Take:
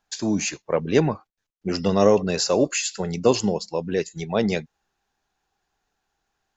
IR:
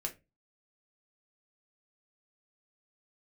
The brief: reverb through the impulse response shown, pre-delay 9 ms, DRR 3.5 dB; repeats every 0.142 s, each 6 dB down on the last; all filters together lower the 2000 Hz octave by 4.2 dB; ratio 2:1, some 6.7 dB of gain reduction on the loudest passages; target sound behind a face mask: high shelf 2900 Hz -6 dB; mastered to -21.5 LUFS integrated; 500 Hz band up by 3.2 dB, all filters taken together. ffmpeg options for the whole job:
-filter_complex "[0:a]equalizer=f=500:t=o:g=4,equalizer=f=2k:t=o:g=-3,acompressor=threshold=-21dB:ratio=2,aecho=1:1:142|284|426|568|710|852:0.501|0.251|0.125|0.0626|0.0313|0.0157,asplit=2[a][b];[1:a]atrim=start_sample=2205,adelay=9[c];[b][c]afir=irnorm=-1:irlink=0,volume=-4dB[d];[a][d]amix=inputs=2:normalize=0,highshelf=f=2.9k:g=-6,volume=1.5dB"

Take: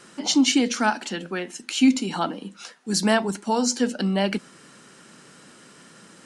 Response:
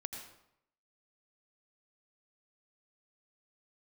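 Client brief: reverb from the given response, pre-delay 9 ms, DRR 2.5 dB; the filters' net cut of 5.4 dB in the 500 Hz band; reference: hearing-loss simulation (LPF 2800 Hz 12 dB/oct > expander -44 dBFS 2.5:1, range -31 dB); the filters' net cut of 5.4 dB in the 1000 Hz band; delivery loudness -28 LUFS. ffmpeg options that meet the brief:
-filter_complex "[0:a]equalizer=f=500:t=o:g=-5.5,equalizer=f=1k:t=o:g=-5,asplit=2[a][b];[1:a]atrim=start_sample=2205,adelay=9[c];[b][c]afir=irnorm=-1:irlink=0,volume=-1dB[d];[a][d]amix=inputs=2:normalize=0,lowpass=2.8k,agate=range=-31dB:threshold=-44dB:ratio=2.5,volume=-3.5dB"

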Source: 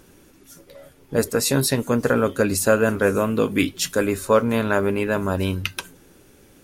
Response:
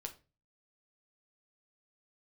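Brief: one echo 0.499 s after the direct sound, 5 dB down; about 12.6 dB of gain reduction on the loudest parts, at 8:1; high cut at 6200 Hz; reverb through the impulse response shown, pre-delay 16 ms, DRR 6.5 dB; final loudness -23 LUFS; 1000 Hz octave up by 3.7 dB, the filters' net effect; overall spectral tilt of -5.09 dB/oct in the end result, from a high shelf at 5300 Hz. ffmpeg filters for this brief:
-filter_complex "[0:a]lowpass=6.2k,equalizer=f=1k:t=o:g=5,highshelf=f=5.3k:g=-5,acompressor=threshold=-23dB:ratio=8,aecho=1:1:499:0.562,asplit=2[a][b];[1:a]atrim=start_sample=2205,adelay=16[c];[b][c]afir=irnorm=-1:irlink=0,volume=-3.5dB[d];[a][d]amix=inputs=2:normalize=0,volume=4dB"

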